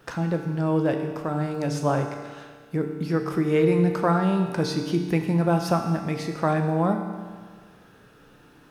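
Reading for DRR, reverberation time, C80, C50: 4.0 dB, 1.7 s, 7.0 dB, 6.0 dB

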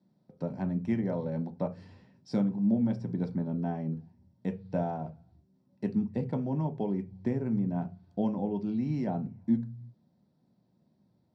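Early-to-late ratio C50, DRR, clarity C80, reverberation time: 16.0 dB, 5.0 dB, 24.0 dB, no single decay rate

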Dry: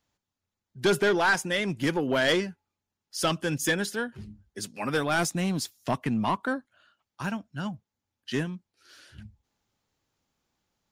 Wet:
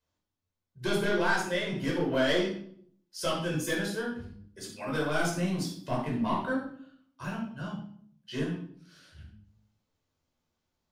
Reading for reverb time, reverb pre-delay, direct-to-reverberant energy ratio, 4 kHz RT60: 0.60 s, 11 ms, -4.0 dB, 0.45 s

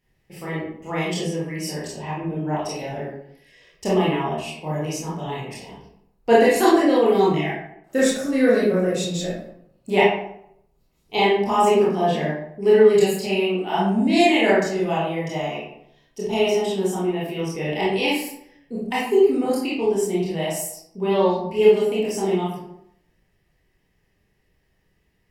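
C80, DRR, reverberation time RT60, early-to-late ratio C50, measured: 5.0 dB, -8.0 dB, 0.70 s, 0.0 dB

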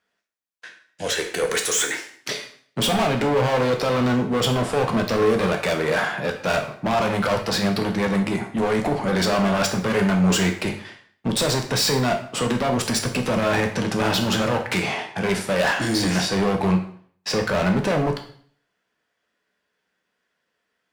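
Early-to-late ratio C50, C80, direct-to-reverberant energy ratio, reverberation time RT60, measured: 9.0 dB, 12.5 dB, 3.0 dB, 0.55 s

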